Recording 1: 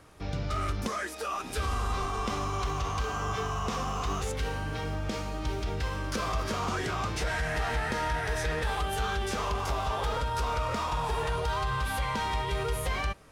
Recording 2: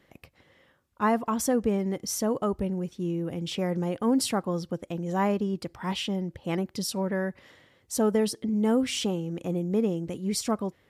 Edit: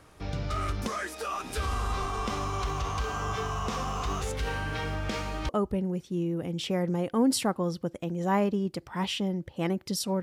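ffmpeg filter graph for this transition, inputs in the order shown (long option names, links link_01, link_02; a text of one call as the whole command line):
ffmpeg -i cue0.wav -i cue1.wav -filter_complex "[0:a]asettb=1/sr,asplit=3[link_01][link_02][link_03];[link_01]atrim=end=4.474[link_04];[link_02]atrim=start=4.47:end=5.49,asetpts=PTS-STARTPTS,afade=type=in:duration=0.004:curve=qsin,afade=type=out:start_time=1.016:duration=0.004:curve=qsin,equalizer=frequency=2000:width=0.7:gain=5[link_05];[link_03]atrim=start=5.486[link_06];[link_04][link_05]acrossfade=duration=0.004:curve1=hsin:curve2=qsin[link_07];[link_07][link_06]acrossfade=duration=0.004:curve1=qsin:curve2=hsin,apad=whole_dur=10.22,atrim=end=10.22,atrim=end=5.492[link_08];[1:a]atrim=start=2.368:end=7.1[link_09];[link_08][link_09]acrossfade=duration=0.004:curve1=hsin:curve2=hsin" out.wav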